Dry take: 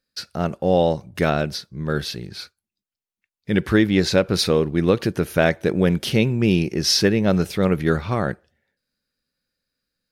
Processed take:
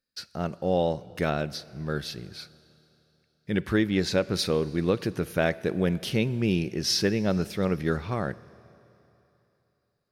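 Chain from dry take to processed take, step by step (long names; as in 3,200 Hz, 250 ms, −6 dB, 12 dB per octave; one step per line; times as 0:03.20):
four-comb reverb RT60 3.2 s, combs from 26 ms, DRR 19 dB
level −7 dB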